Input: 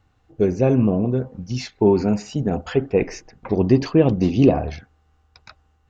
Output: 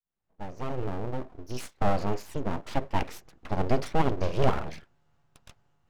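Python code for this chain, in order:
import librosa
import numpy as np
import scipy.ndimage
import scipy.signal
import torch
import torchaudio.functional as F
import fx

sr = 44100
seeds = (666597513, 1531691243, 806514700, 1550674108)

y = fx.fade_in_head(x, sr, length_s=1.6)
y = np.abs(y)
y = y * librosa.db_to_amplitude(-6.0)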